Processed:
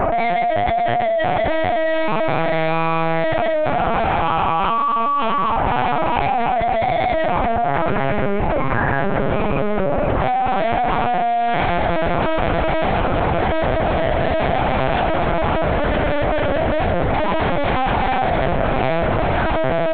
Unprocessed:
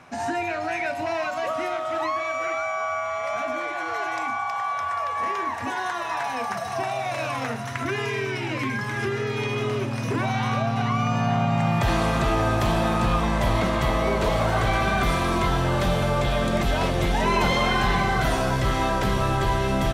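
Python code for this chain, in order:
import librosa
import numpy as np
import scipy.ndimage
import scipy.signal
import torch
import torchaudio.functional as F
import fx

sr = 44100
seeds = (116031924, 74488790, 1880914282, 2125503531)

p1 = scipy.signal.sosfilt(scipy.signal.butter(2, 1600.0, 'lowpass', fs=sr, output='sos'), x)
p2 = fx.peak_eq(p1, sr, hz=650.0, db=13.0, octaves=1.1)
p3 = np.clip(p2, -10.0 ** (-20.5 / 20.0), 10.0 ** (-20.5 / 20.0))
p4 = p3 + fx.room_flutter(p3, sr, wall_m=3.6, rt60_s=0.23, dry=0)
p5 = fx.lpc_vocoder(p4, sr, seeds[0], excitation='pitch_kept', order=8)
p6 = fx.env_flatten(p5, sr, amount_pct=100)
y = p6 * librosa.db_to_amplitude(-1.5)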